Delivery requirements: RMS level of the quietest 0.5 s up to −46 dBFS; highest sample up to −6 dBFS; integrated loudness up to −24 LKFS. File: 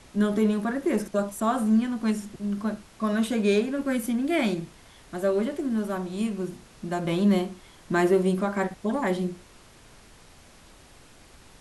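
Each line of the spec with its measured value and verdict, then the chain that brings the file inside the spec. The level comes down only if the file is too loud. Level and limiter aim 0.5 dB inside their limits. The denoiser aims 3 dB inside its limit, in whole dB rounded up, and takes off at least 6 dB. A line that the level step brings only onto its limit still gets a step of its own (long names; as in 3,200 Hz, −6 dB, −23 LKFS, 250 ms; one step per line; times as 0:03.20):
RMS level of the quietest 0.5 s −52 dBFS: in spec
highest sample −9.5 dBFS: in spec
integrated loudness −26.5 LKFS: in spec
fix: no processing needed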